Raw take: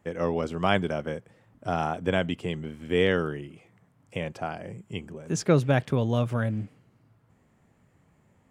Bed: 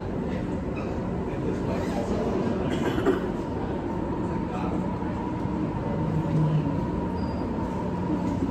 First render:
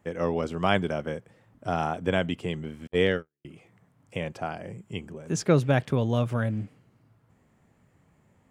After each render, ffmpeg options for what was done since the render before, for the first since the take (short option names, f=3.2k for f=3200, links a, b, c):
-filter_complex "[0:a]asettb=1/sr,asplit=3[a][b][c];[a]atrim=end=2.874[d];[b]atrim=start=2.87:end=3.45,asetpts=PTS-STARTPTS,afade=t=in:d=0.004:c=qsin,afade=t=out:st=0.576:d=0.004:c=qsin,agate=range=-56dB:threshold=-24dB:ratio=16:release=100:detection=peak[e];[c]atrim=start=3.446[f];[d][e]acrossfade=d=0.004:c1=hsin:c2=qsin[g];[g][f]acrossfade=d=0.004:c1=qsin:c2=hsin"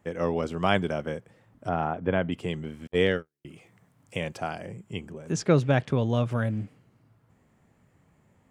-filter_complex "[0:a]asplit=3[a][b][c];[a]afade=t=out:st=1.68:d=0.02[d];[b]lowpass=2k,afade=t=in:st=1.68:d=0.02,afade=t=out:st=2.31:d=0.02[e];[c]afade=t=in:st=2.31:d=0.02[f];[d][e][f]amix=inputs=3:normalize=0,asettb=1/sr,asplit=3[g][h][i];[g]atrim=end=3.474[j];[h]atrim=start=3.47:end=4.66,asetpts=PTS-STARTPTS,afade=t=in:d=0.004:c=qsin,afade=t=out:st=1.186:d=0.004:c=qsin,highshelf=f=2.9k:g=6.5[k];[i]atrim=start=4.656[l];[j][k]acrossfade=d=0.004:c1=hsin:c2=qsin[m];[m][l]acrossfade=d=0.004:c1=qsin:c2=hsin,asettb=1/sr,asplit=3[n][o][p];[n]atrim=end=5.324[q];[o]atrim=start=5.32:end=6.31,asetpts=PTS-STARTPTS,afade=t=in:d=0.004:c=qsin,afade=t=out:st=0.986:d=0.004:c=qsin,lowpass=7.9k[r];[p]atrim=start=6.306[s];[q][r]acrossfade=d=0.004:c1=hsin:c2=qsin[t];[t][s]acrossfade=d=0.004:c1=qsin:c2=hsin"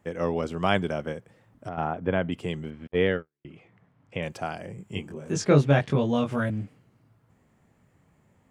-filter_complex "[0:a]asettb=1/sr,asplit=3[a][b][c];[a]atrim=end=1.124[d];[b]atrim=start=1.12:end=1.78,asetpts=PTS-STARTPTS,afade=t=in:d=0.004:c=qsin,afade=t=out:st=0.656:d=0.004:c=qsin,acompressor=threshold=-30dB:ratio=6:attack=3.2:release=140:knee=1:detection=peak[e];[c]atrim=start=1.776[f];[d][e]acrossfade=d=0.004:c1=hsin:c2=qsin[g];[g][f]acrossfade=d=0.004:c1=qsin:c2=hsin,asettb=1/sr,asplit=3[h][i][j];[h]atrim=end=2.704[k];[i]atrim=start=2.7:end=4.23,asetpts=PTS-STARTPTS,afade=t=in:d=0.004:c=qsin,afade=t=out:st=1.526:d=0.004:c=qsin,lowpass=2.9k[l];[j]atrim=start=4.226[m];[k][l]acrossfade=d=0.004:c1=hsin:c2=qsin[n];[n][m]acrossfade=d=0.004:c1=qsin:c2=hsin,asettb=1/sr,asplit=3[o][p][q];[o]atrim=end=4.764[r];[p]atrim=start=4.76:end=6.5,asetpts=PTS-STARTPTS,afade=t=in:d=0.004:c=qsin,afade=t=out:st=1.736:d=0.004:c=qsin,asplit=2[s][t];[t]adelay=21,volume=-2dB[u];[s][u]amix=inputs=2:normalize=0,atrim=end_sample=76734[v];[q]atrim=start=6.496[w];[r][v]acrossfade=d=0.004:c1=hsin:c2=qsin[x];[x][w]acrossfade=d=0.004:c1=qsin:c2=hsin"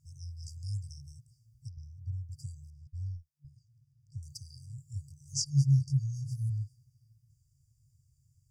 -af "equalizer=f=4k:w=1.7:g=6.5,afftfilt=real='re*(1-between(b*sr/4096,140,4600))':imag='im*(1-between(b*sr/4096,140,4600))':win_size=4096:overlap=0.75"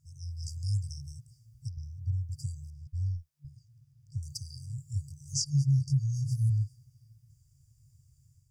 -af "dynaudnorm=f=110:g=5:m=6dB,alimiter=limit=-19dB:level=0:latency=1:release=199"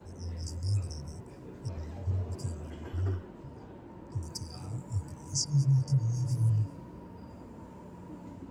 -filter_complex "[1:a]volume=-19dB[a];[0:a][a]amix=inputs=2:normalize=0"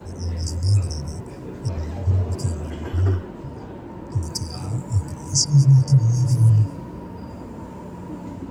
-af "volume=12dB"